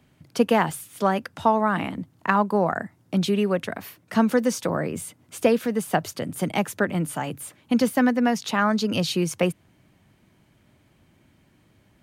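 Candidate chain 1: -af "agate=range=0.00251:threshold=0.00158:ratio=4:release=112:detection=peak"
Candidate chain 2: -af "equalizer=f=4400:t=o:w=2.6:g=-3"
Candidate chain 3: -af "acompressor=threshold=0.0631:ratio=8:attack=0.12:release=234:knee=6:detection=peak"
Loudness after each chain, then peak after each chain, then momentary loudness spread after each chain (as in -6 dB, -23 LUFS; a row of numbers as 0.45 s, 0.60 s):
-24.0 LUFS, -24.5 LUFS, -33.5 LUFS; -4.5 dBFS, -5.5 dBFS, -21.5 dBFS; 11 LU, 12 LU, 6 LU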